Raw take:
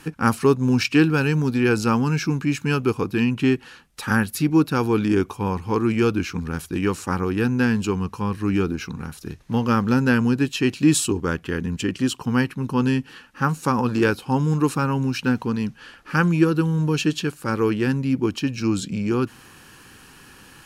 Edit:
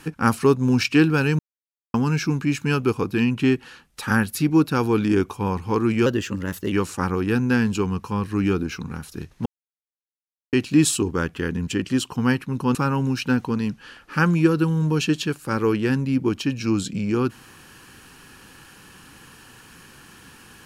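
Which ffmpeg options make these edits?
-filter_complex "[0:a]asplit=8[a][b][c][d][e][f][g][h];[a]atrim=end=1.39,asetpts=PTS-STARTPTS,afade=t=out:st=1.386:d=0.004:c=hsin[i];[b]atrim=start=1.39:end=1.94,asetpts=PTS-STARTPTS,volume=0[j];[c]atrim=start=1.94:end=6.064,asetpts=PTS-STARTPTS,afade=t=in:d=0.004:c=hsin[k];[d]atrim=start=6.06:end=6.81,asetpts=PTS-STARTPTS,asetrate=50274,aresample=44100,atrim=end_sample=29013,asetpts=PTS-STARTPTS[l];[e]atrim=start=6.806:end=9.55,asetpts=PTS-STARTPTS,afade=t=out:st=2.74:d=0.004:c=hsin[m];[f]atrim=start=9.55:end=10.62,asetpts=PTS-STARTPTS,volume=0[n];[g]atrim=start=10.62:end=12.842,asetpts=PTS-STARTPTS,afade=t=in:d=0.004:c=hsin[o];[h]atrim=start=14.718[p];[i][j][k]concat=n=3:v=0:a=1[q];[q][l]acrossfade=d=0.004:c1=hsin:c2=hsin[r];[m][n][o]concat=n=3:v=0:a=1[s];[r][s]acrossfade=d=0.004:c1=hsin:c2=hsin[t];[t][p]acrossfade=d=0.004:c1=hsin:c2=hsin"

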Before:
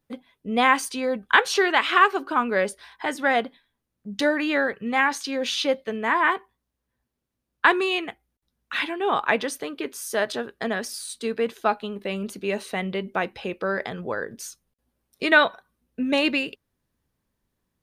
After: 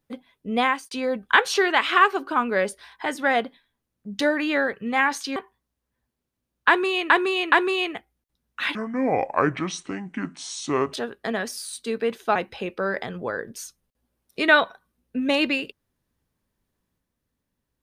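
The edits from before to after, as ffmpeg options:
-filter_complex "[0:a]asplit=8[a][b][c][d][e][f][g][h];[a]atrim=end=0.91,asetpts=PTS-STARTPTS,afade=t=out:st=0.56:d=0.35[i];[b]atrim=start=0.91:end=5.362,asetpts=PTS-STARTPTS,afade=t=in:d=0.004:c=hsin[j];[c]atrim=start=6.328:end=8.072[k];[d]atrim=start=7.648:end=8.072[l];[e]atrim=start=7.648:end=8.884[m];[f]atrim=start=8.88:end=10.3,asetpts=PTS-STARTPTS,asetrate=28665,aresample=44100[n];[g]atrim=start=10.296:end=11.722[o];[h]atrim=start=13.188[p];[i][j]concat=n=2:v=0:a=1[q];[q][k]acrossfade=d=0.004:c1=hsin:c2=hsin[r];[r][l]acrossfade=d=0.004:c1=hsin:c2=hsin[s];[s][m]acrossfade=d=0.004:c1=hsin:c2=hsin[t];[t][n]acrossfade=d=0.004:c1=hsin:c2=hsin[u];[u][o]acrossfade=d=0.004:c1=hsin:c2=hsin[v];[v][p]acrossfade=d=0.004:c1=hsin:c2=hsin"

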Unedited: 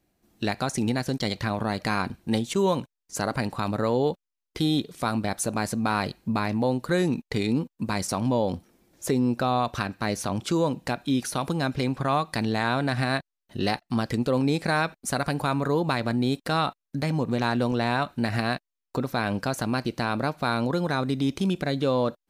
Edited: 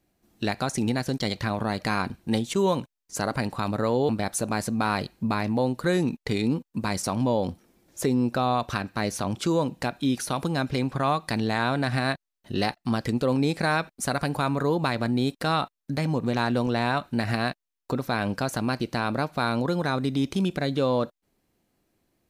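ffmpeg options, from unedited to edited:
-filter_complex "[0:a]asplit=2[a][b];[a]atrim=end=4.092[c];[b]atrim=start=5.138[d];[c][d]acrossfade=d=0.004:c1=hsin:c2=hsin"

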